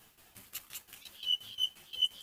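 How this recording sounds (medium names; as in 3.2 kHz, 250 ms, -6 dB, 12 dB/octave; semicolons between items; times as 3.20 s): tremolo saw down 5.7 Hz, depth 85%; a quantiser's noise floor 12-bit, dither none; a shimmering, thickened sound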